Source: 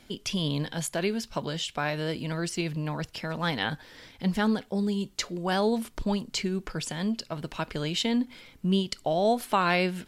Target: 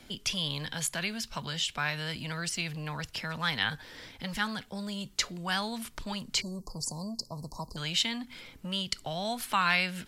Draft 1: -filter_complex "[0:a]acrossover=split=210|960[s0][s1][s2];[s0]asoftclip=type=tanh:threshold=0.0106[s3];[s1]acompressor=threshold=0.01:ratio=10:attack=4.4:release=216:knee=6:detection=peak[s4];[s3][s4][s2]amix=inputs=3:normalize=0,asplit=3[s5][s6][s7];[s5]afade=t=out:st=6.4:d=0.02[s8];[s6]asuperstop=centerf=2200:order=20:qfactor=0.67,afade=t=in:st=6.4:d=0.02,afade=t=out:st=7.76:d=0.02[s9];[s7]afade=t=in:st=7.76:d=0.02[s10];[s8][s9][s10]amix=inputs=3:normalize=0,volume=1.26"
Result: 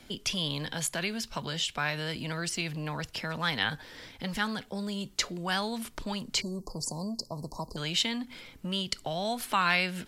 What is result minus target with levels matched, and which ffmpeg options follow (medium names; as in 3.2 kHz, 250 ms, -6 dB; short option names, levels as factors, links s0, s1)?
compression: peak gain reduction -9 dB
-filter_complex "[0:a]acrossover=split=210|960[s0][s1][s2];[s0]asoftclip=type=tanh:threshold=0.0106[s3];[s1]acompressor=threshold=0.00316:ratio=10:attack=4.4:release=216:knee=6:detection=peak[s4];[s3][s4][s2]amix=inputs=3:normalize=0,asplit=3[s5][s6][s7];[s5]afade=t=out:st=6.4:d=0.02[s8];[s6]asuperstop=centerf=2200:order=20:qfactor=0.67,afade=t=in:st=6.4:d=0.02,afade=t=out:st=7.76:d=0.02[s9];[s7]afade=t=in:st=7.76:d=0.02[s10];[s8][s9][s10]amix=inputs=3:normalize=0,volume=1.26"